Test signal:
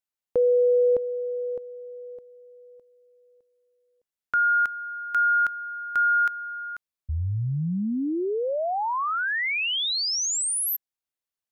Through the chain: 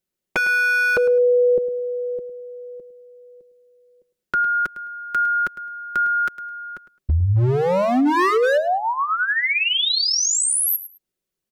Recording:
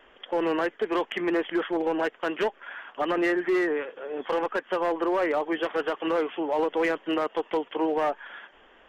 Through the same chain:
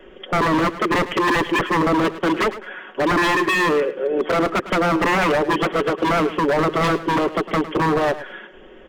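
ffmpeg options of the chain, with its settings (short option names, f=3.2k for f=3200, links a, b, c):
-filter_complex "[0:a]lowshelf=f=580:t=q:w=1.5:g=9.5,aecho=1:1:5.4:0.53,acrossover=split=350[a][b];[b]acompressor=threshold=-18dB:ratio=2.5:attack=57:release=40:knee=2.83:detection=peak[c];[a][c]amix=inputs=2:normalize=0,aeval=exprs='0.126*(abs(mod(val(0)/0.126+3,4)-2)-1)':c=same,asplit=2[d][e];[e]aecho=0:1:106|212:0.188|0.0358[f];[d][f]amix=inputs=2:normalize=0,volume=5dB"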